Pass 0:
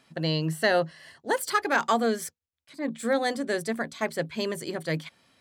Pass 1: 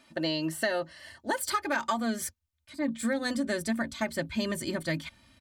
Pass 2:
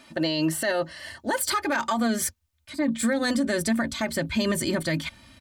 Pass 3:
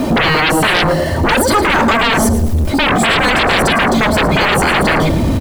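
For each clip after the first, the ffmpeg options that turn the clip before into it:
-af "asubboost=boost=8.5:cutoff=140,aecho=1:1:3.3:0.71,acompressor=threshold=-25dB:ratio=10"
-af "alimiter=level_in=0.5dB:limit=-24dB:level=0:latency=1:release=43,volume=-0.5dB,volume=8.5dB"
-filter_complex "[0:a]aeval=exprs='val(0)+0.5*0.0237*sgn(val(0))':c=same,aecho=1:1:109|218|327|436:0.251|0.1|0.0402|0.0161,acrossover=split=720|2700[a][b][c];[a]aeval=exprs='0.178*sin(PI/2*8.91*val(0)/0.178)':c=same[d];[d][b][c]amix=inputs=3:normalize=0,volume=5.5dB"

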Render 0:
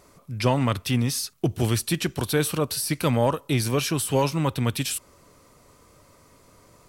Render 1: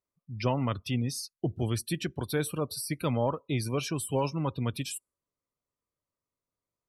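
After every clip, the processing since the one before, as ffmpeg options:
-af "afftdn=nr=32:nf=-33,volume=-6.5dB"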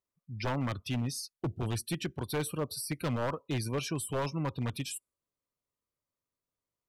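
-af "aeval=exprs='0.0708*(abs(mod(val(0)/0.0708+3,4)-2)-1)':c=same,volume=-2dB"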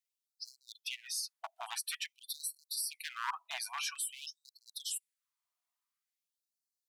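-af "afftfilt=real='re*gte(b*sr/1024,610*pow(4100/610,0.5+0.5*sin(2*PI*0.49*pts/sr)))':imag='im*gte(b*sr/1024,610*pow(4100/610,0.5+0.5*sin(2*PI*0.49*pts/sr)))':win_size=1024:overlap=0.75,volume=2dB"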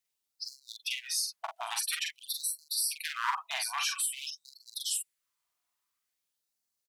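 -filter_complex "[0:a]asplit=2[a][b];[b]adelay=44,volume=-4dB[c];[a][c]amix=inputs=2:normalize=0,volume=5dB"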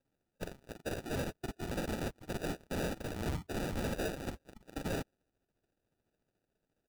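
-af "tremolo=f=14:d=0.49,acrusher=samples=41:mix=1:aa=0.000001,asoftclip=type=hard:threshold=-35dB,volume=3dB"

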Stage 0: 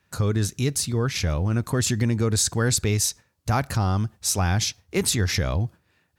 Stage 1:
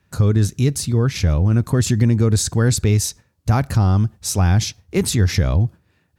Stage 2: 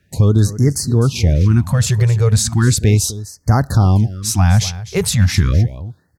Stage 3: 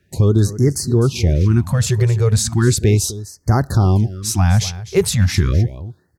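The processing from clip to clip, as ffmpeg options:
-af "lowshelf=f=410:g=8.5"
-af "aecho=1:1:254:0.168,afftfilt=real='re*(1-between(b*sr/1024,250*pow(3100/250,0.5+0.5*sin(2*PI*0.36*pts/sr))/1.41,250*pow(3100/250,0.5+0.5*sin(2*PI*0.36*pts/sr))*1.41))':imag='im*(1-between(b*sr/1024,250*pow(3100/250,0.5+0.5*sin(2*PI*0.36*pts/sr))/1.41,250*pow(3100/250,0.5+0.5*sin(2*PI*0.36*pts/sr))*1.41))':win_size=1024:overlap=0.75,volume=3.5dB"
-af "equalizer=f=370:w=5:g=9,volume=-2dB"

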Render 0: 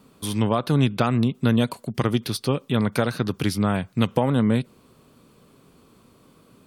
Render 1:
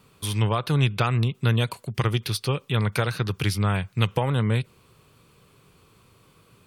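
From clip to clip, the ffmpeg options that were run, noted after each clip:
-af "equalizer=f=100:t=o:w=0.67:g=5,equalizer=f=250:t=o:w=0.67:g=-12,equalizer=f=630:t=o:w=0.67:g=-5,equalizer=f=2.5k:t=o:w=0.67:g=4"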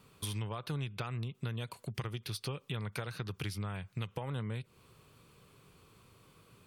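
-af "acompressor=threshold=-31dB:ratio=6,volume=-4.5dB"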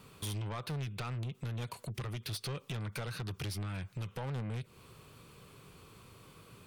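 -af "asoftclip=type=tanh:threshold=-40dB,volume=5.5dB"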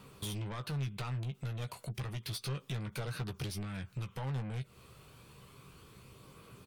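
-filter_complex "[0:a]aphaser=in_gain=1:out_gain=1:delay=1.6:decay=0.23:speed=0.31:type=triangular,asplit=2[a][b];[b]adelay=15,volume=-8dB[c];[a][c]amix=inputs=2:normalize=0,volume=-1.5dB"

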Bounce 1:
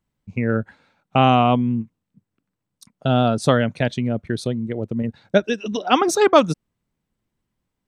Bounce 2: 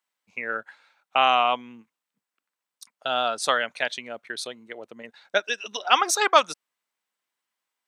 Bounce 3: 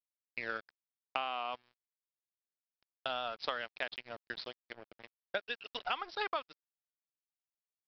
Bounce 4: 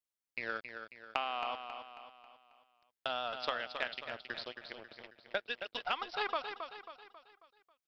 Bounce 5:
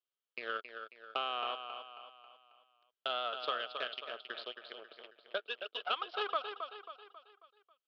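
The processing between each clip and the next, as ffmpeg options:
-af "highpass=1k,volume=2dB"
-af "aresample=11025,aeval=exprs='sgn(val(0))*max(abs(val(0))-0.0133,0)':c=same,aresample=44100,acompressor=threshold=-27dB:ratio=12,volume=-5dB"
-af "aeval=exprs='0.168*(cos(1*acos(clip(val(0)/0.168,-1,1)))-cos(1*PI/2))+0.0075*(cos(2*acos(clip(val(0)/0.168,-1,1)))-cos(2*PI/2))+0.00841*(cos(3*acos(clip(val(0)/0.168,-1,1)))-cos(3*PI/2))':c=same,aecho=1:1:271|542|813|1084|1355:0.398|0.183|0.0842|0.0388|0.0178,volume=1.5dB"
-af "aeval=exprs='(tanh(20*val(0)+0.65)-tanh(0.65))/20':c=same,highpass=400,equalizer=f=420:t=q:w=4:g=8,equalizer=f=610:t=q:w=4:g=3,equalizer=f=900:t=q:w=4:g=-5,equalizer=f=1.3k:t=q:w=4:g=9,equalizer=f=2k:t=q:w=4:g=-9,equalizer=f=3.1k:t=q:w=4:g=9,lowpass=f=4.1k:w=0.5412,lowpass=f=4.1k:w=1.3066,bandreject=f=1.4k:w=21,volume=1dB"

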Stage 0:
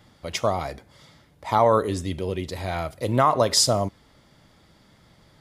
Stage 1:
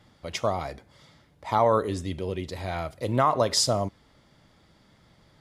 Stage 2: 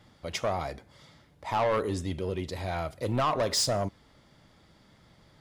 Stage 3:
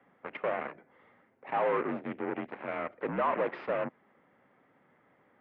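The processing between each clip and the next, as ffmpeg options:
-af "highshelf=f=11k:g=-8,volume=-3dB"
-af "asoftclip=type=tanh:threshold=-21dB"
-af "aeval=exprs='0.0891*(cos(1*acos(clip(val(0)/0.0891,-1,1)))-cos(1*PI/2))+0.0251*(cos(7*acos(clip(val(0)/0.0891,-1,1)))-cos(7*PI/2))':c=same,highpass=f=260:t=q:w=0.5412,highpass=f=260:t=q:w=1.307,lowpass=f=2.4k:t=q:w=0.5176,lowpass=f=2.4k:t=q:w=0.7071,lowpass=f=2.4k:t=q:w=1.932,afreqshift=-55,volume=-2dB"

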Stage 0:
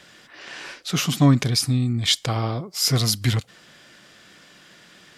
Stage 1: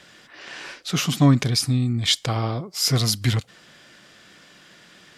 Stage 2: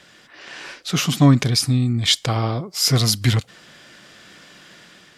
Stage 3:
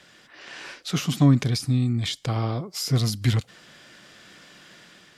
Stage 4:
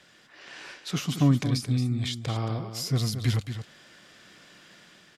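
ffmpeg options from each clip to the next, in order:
-af "highshelf=f=12k:g=-4"
-af "dynaudnorm=f=480:g=3:m=4.5dB"
-filter_complex "[0:a]acrossover=split=420[a][b];[b]acompressor=threshold=-25dB:ratio=5[c];[a][c]amix=inputs=2:normalize=0,volume=-3.5dB"
-af "aecho=1:1:224:0.335,volume=-4dB"

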